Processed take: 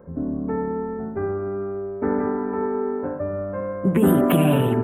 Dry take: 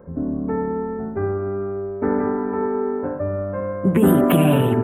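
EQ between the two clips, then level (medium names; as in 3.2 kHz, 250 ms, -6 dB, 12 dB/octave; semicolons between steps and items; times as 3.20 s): hum notches 50/100 Hz; -2.0 dB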